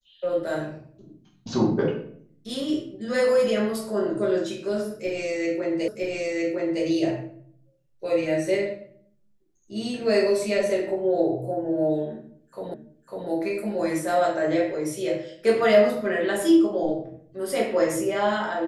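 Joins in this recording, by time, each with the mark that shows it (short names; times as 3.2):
5.88 repeat of the last 0.96 s
12.74 repeat of the last 0.55 s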